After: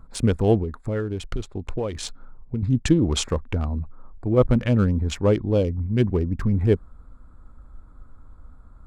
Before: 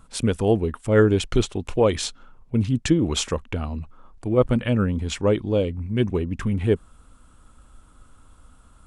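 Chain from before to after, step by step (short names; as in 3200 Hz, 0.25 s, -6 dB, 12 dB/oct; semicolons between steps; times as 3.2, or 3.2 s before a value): Wiener smoothing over 15 samples; low shelf 95 Hz +7.5 dB; 0.61–2.63 compressor 6:1, threshold -24 dBFS, peak gain reduction 13.5 dB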